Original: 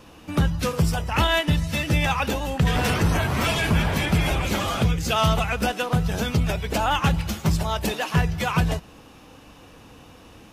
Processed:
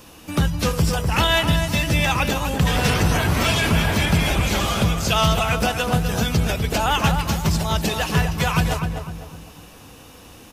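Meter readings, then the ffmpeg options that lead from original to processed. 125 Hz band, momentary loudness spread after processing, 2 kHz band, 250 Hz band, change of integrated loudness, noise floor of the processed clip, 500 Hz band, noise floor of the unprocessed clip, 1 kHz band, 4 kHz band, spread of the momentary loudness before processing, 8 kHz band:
+2.5 dB, 5 LU, +3.5 dB, +2.5 dB, +3.0 dB, -44 dBFS, +2.5 dB, -48 dBFS, +2.5 dB, +5.0 dB, 4 LU, +6.0 dB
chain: -filter_complex "[0:a]crystalizer=i=2:c=0,asplit=2[a][b];[b]adelay=251,lowpass=f=1.6k:p=1,volume=-5dB,asplit=2[c][d];[d]adelay=251,lowpass=f=1.6k:p=1,volume=0.42,asplit=2[e][f];[f]adelay=251,lowpass=f=1.6k:p=1,volume=0.42,asplit=2[g][h];[h]adelay=251,lowpass=f=1.6k:p=1,volume=0.42,asplit=2[i][j];[j]adelay=251,lowpass=f=1.6k:p=1,volume=0.42[k];[a][c][e][g][i][k]amix=inputs=6:normalize=0,acrossover=split=6700[l][m];[m]acompressor=threshold=-36dB:ratio=4:attack=1:release=60[n];[l][n]amix=inputs=2:normalize=0,volume=1dB"

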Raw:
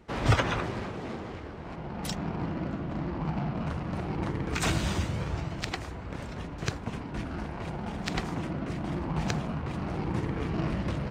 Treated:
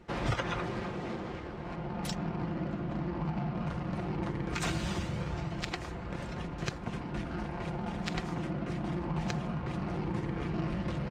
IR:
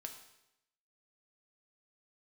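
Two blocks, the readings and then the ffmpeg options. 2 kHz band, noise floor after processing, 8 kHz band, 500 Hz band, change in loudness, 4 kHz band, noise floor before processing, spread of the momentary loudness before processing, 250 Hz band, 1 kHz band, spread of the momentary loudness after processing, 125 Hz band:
-4.0 dB, -41 dBFS, -5.5 dB, -2.5 dB, -3.0 dB, -4.0 dB, -40 dBFS, 10 LU, -2.0 dB, -3.0 dB, 6 LU, -3.5 dB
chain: -af "aecho=1:1:5.7:0.39,acompressor=threshold=-33dB:ratio=2,highshelf=f=10k:g=-6.5"

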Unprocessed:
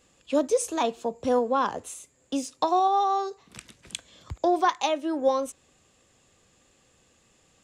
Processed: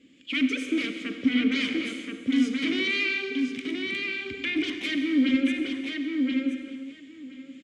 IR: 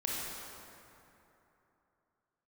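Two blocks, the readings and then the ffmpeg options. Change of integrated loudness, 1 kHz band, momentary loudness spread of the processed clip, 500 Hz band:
-0.5 dB, -23.5 dB, 11 LU, -10.5 dB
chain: -filter_complex "[0:a]aeval=exprs='0.251*sin(PI/2*5.62*val(0)/0.251)':c=same,acrossover=split=1000[a][b];[a]aeval=exprs='val(0)*(1-0.5/2+0.5/2*cos(2*PI*1.5*n/s))':c=same[c];[b]aeval=exprs='val(0)*(1-0.5/2-0.5/2*cos(2*PI*1.5*n/s))':c=same[d];[c][d]amix=inputs=2:normalize=0,asplit=3[e][f][g];[e]bandpass=f=270:t=q:w=8,volume=0dB[h];[f]bandpass=f=2.29k:t=q:w=8,volume=-6dB[i];[g]bandpass=f=3.01k:t=q:w=8,volume=-9dB[j];[h][i][j]amix=inputs=3:normalize=0,asplit=2[k][l];[l]adelay=1027,lowpass=f=4.4k:p=1,volume=-3.5dB,asplit=2[m][n];[n]adelay=1027,lowpass=f=4.4k:p=1,volume=0.15,asplit=2[o][p];[p]adelay=1027,lowpass=f=4.4k:p=1,volume=0.15[q];[k][m][o][q]amix=inputs=4:normalize=0,asplit=2[r][s];[1:a]atrim=start_sample=2205,afade=t=out:st=0.33:d=0.01,atrim=end_sample=14994,asetrate=27342,aresample=44100[t];[s][t]afir=irnorm=-1:irlink=0,volume=-9dB[u];[r][u]amix=inputs=2:normalize=0,volume=-1dB"

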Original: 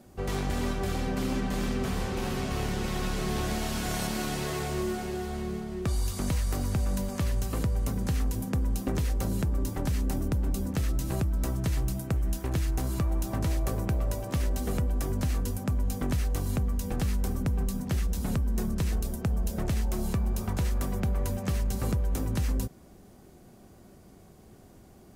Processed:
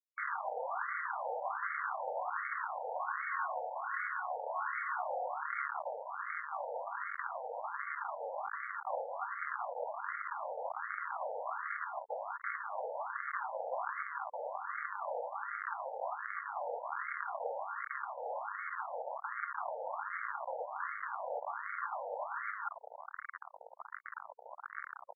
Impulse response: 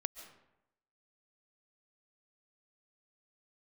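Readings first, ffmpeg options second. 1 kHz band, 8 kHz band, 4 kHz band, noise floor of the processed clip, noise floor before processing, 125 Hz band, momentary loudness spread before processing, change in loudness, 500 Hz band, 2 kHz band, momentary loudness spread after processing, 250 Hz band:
+3.5 dB, under -40 dB, under -40 dB, -54 dBFS, -53 dBFS, under -40 dB, 2 LU, -9.0 dB, -5.5 dB, +3.0 dB, 5 LU, under -40 dB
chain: -filter_complex "[0:a]aeval=exprs='val(0)+0.00398*sin(2*PI*1400*n/s)':c=same,areverse,acompressor=threshold=-41dB:ratio=4,areverse,equalizer=f=540:t=o:w=0.78:g=-11.5,bandreject=f=428.7:t=h:w=4,bandreject=f=857.4:t=h:w=4,bandreject=f=1.2861k:t=h:w=4,bandreject=f=1.7148k:t=h:w=4,bandreject=f=2.1435k:t=h:w=4,bandreject=f=2.5722k:t=h:w=4,bandreject=f=3.0009k:t=h:w=4,bandreject=f=3.4296k:t=h:w=4,bandreject=f=3.8583k:t=h:w=4,bandreject=f=4.287k:t=h:w=4,bandreject=f=4.7157k:t=h:w=4,bandreject=f=5.1444k:t=h:w=4,bandreject=f=5.5731k:t=h:w=4,bandreject=f=6.0018k:t=h:w=4,bandreject=f=6.4305k:t=h:w=4,bandreject=f=6.8592k:t=h:w=4,bandreject=f=7.2879k:t=h:w=4,bandreject=f=7.7166k:t=h:w=4,bandreject=f=8.1453k:t=h:w=4,bandreject=f=8.574k:t=h:w=4,bandreject=f=9.0027k:t=h:w=4,bandreject=f=9.4314k:t=h:w=4,bandreject=f=9.8601k:t=h:w=4,bandreject=f=10.2888k:t=h:w=4,bandreject=f=10.7175k:t=h:w=4,bandreject=f=11.1462k:t=h:w=4,bandreject=f=11.5749k:t=h:w=4,asplit=2[a][b];[b]adelay=95,lowpass=f=2.5k:p=1,volume=-16dB,asplit=2[c][d];[d]adelay=95,lowpass=f=2.5k:p=1,volume=0.46,asplit=2[e][f];[f]adelay=95,lowpass=f=2.5k:p=1,volume=0.46,asplit=2[g][h];[h]adelay=95,lowpass=f=2.5k:p=1,volume=0.46[i];[c][e][g][i]amix=inputs=4:normalize=0[j];[a][j]amix=inputs=2:normalize=0,acrusher=bits=6:mix=0:aa=0.000001,lowshelf=f=240:g=9.5,afftfilt=real='re*between(b*sr/1024,640*pow(1600/640,0.5+0.5*sin(2*PI*1.3*pts/sr))/1.41,640*pow(1600/640,0.5+0.5*sin(2*PI*1.3*pts/sr))*1.41)':imag='im*between(b*sr/1024,640*pow(1600/640,0.5+0.5*sin(2*PI*1.3*pts/sr))/1.41,640*pow(1600/640,0.5+0.5*sin(2*PI*1.3*pts/sr))*1.41)':win_size=1024:overlap=0.75,volume=14.5dB"

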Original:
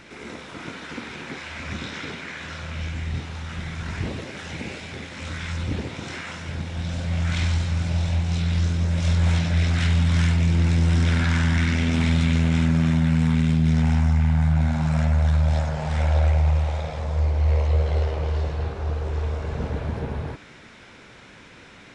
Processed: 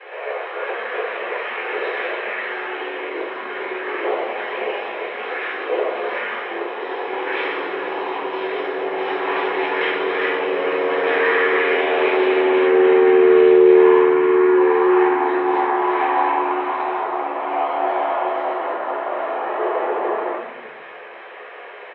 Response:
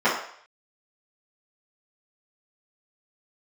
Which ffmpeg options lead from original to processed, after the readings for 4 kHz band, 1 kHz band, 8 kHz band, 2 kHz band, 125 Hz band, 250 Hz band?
+1.5 dB, +15.5 dB, under -30 dB, +9.5 dB, under -30 dB, +3.5 dB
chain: -filter_complex "[0:a]highpass=f=170:t=q:w=0.5412,highpass=f=170:t=q:w=1.307,lowpass=f=3.2k:t=q:w=0.5176,lowpass=f=3.2k:t=q:w=0.7071,lowpass=f=3.2k:t=q:w=1.932,afreqshift=210,asplit=4[a][b][c][d];[b]adelay=260,afreqshift=-100,volume=-20dB[e];[c]adelay=520,afreqshift=-200,volume=-27.7dB[f];[d]adelay=780,afreqshift=-300,volume=-35.5dB[g];[a][e][f][g]amix=inputs=4:normalize=0[h];[1:a]atrim=start_sample=2205[i];[h][i]afir=irnorm=-1:irlink=0,volume=-8.5dB"

